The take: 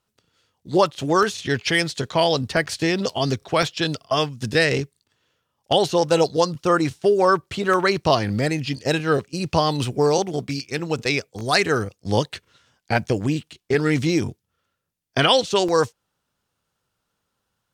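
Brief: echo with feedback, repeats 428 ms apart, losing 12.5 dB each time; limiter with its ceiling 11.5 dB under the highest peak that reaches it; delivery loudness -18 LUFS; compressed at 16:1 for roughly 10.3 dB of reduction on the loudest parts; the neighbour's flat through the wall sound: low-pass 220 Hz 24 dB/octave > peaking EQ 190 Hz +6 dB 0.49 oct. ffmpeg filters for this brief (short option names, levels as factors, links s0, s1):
-af "acompressor=threshold=0.0708:ratio=16,alimiter=limit=0.0891:level=0:latency=1,lowpass=f=220:w=0.5412,lowpass=f=220:w=1.3066,equalizer=f=190:t=o:w=0.49:g=6,aecho=1:1:428|856|1284:0.237|0.0569|0.0137,volume=7.94"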